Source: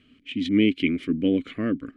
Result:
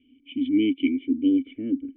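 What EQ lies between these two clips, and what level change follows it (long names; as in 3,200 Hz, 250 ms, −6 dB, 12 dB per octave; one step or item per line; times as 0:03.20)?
formant resonators in series i
low-shelf EQ 110 Hz −4 dB
phaser with its sweep stopped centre 420 Hz, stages 4
+7.5 dB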